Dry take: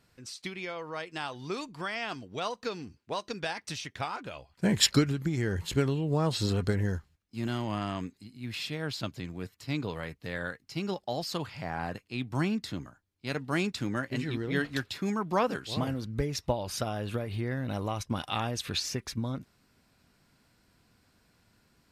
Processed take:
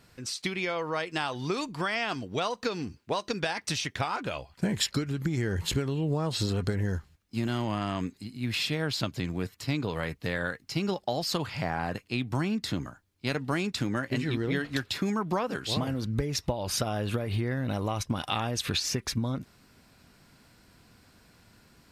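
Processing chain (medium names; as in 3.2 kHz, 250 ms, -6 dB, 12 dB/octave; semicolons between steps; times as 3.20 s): compression 12:1, threshold -33 dBFS, peak gain reduction 15.5 dB; trim +8 dB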